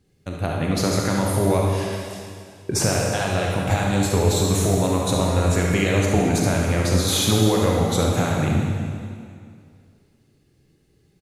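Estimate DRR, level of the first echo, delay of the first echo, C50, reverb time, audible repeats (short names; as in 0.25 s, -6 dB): -2.0 dB, -7.5 dB, 72 ms, -1.0 dB, 2.2 s, 1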